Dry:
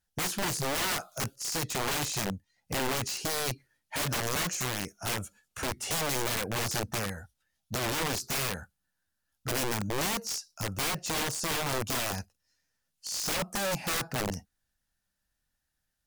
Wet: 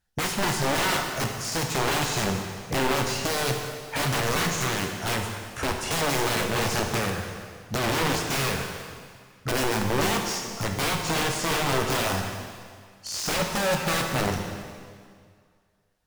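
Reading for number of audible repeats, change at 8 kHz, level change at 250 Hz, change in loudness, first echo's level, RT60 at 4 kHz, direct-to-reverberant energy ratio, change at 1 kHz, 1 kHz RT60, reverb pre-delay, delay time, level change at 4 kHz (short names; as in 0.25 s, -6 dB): none, +2.5 dB, +7.5 dB, +5.0 dB, none, 1.9 s, 2.0 dB, +7.5 dB, 2.0 s, 5 ms, none, +5.0 dB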